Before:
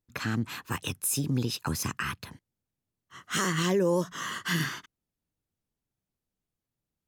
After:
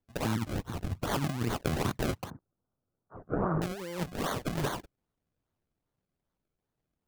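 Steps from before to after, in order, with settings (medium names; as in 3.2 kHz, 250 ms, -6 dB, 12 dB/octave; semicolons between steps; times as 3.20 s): decimation with a swept rate 33×, swing 100% 2.5 Hz; 0.53–1.07 s: bass shelf 150 Hz +11 dB; 2.30–3.62 s: Chebyshev low-pass 1.4 kHz, order 4; compressor with a negative ratio -30 dBFS, ratio -0.5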